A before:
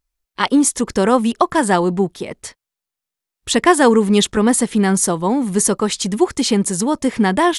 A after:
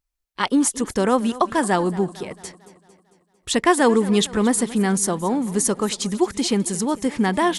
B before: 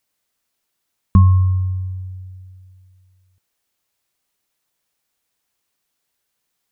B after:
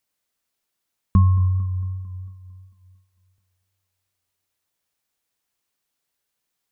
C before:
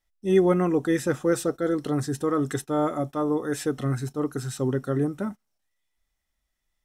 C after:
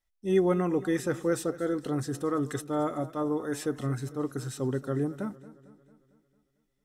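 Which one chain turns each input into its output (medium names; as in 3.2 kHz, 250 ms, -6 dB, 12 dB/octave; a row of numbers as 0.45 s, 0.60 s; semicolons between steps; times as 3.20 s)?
modulated delay 225 ms, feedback 54%, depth 76 cents, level -18 dB; trim -4.5 dB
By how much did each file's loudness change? -4.5 LU, -4.5 LU, -4.5 LU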